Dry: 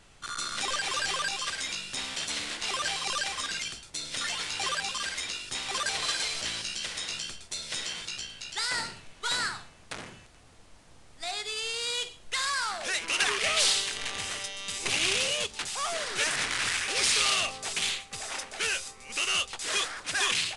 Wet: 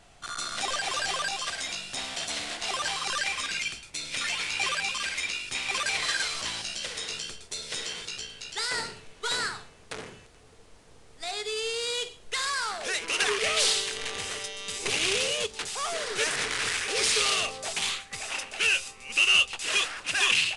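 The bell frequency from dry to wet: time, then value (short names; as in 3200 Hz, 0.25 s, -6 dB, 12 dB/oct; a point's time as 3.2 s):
bell +10.5 dB 0.3 oct
2.75 s 700 Hz
3.3 s 2400 Hz
5.94 s 2400 Hz
6.97 s 440 Hz
17.53 s 440 Hz
18.26 s 2700 Hz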